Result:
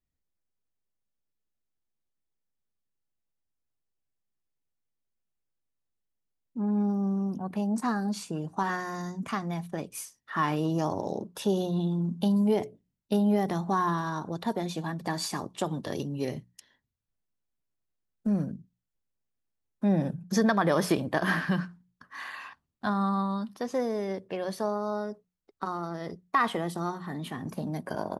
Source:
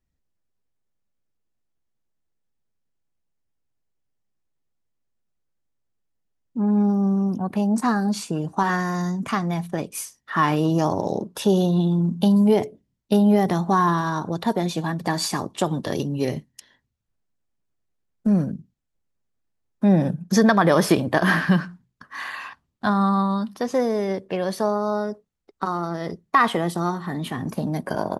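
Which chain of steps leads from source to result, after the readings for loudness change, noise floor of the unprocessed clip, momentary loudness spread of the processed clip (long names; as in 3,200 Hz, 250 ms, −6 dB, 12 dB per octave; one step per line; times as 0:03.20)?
−7.5 dB, −75 dBFS, 11 LU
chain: mains-hum notches 60/120/180 Hz
level −7.5 dB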